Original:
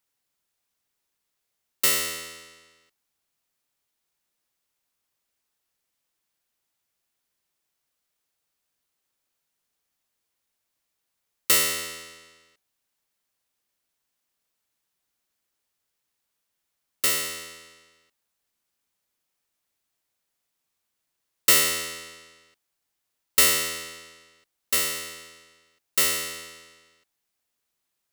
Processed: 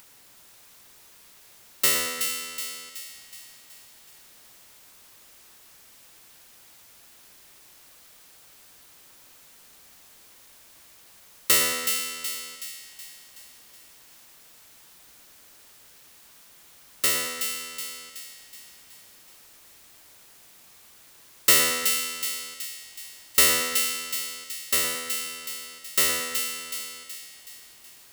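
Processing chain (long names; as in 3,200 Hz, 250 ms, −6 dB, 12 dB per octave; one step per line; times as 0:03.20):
upward compression, threshold −32 dBFS
echo with a time of its own for lows and highs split 2,100 Hz, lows 113 ms, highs 373 ms, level −6.5 dB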